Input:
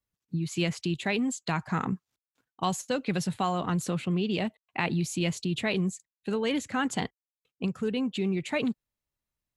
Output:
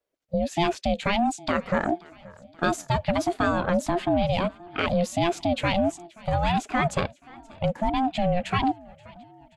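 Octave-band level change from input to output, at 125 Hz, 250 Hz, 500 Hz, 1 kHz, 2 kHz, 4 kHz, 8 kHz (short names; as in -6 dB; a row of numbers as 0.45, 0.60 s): +2.0, +2.0, +7.0, +8.5, +4.0, +2.5, -1.5 dB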